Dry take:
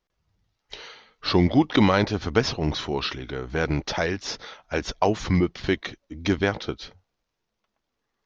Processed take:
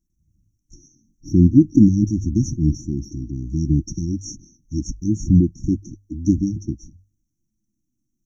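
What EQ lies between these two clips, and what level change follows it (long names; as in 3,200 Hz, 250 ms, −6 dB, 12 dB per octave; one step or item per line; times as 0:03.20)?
linear-phase brick-wall band-stop 350–5,500 Hz
low-shelf EQ 330 Hz +5 dB
mains-hum notches 50/100 Hz
+4.5 dB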